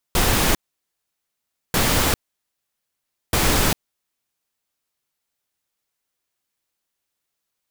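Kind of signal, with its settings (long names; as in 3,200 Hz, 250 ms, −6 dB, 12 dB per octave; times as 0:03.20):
noise bursts pink, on 0.40 s, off 1.19 s, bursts 3, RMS −18 dBFS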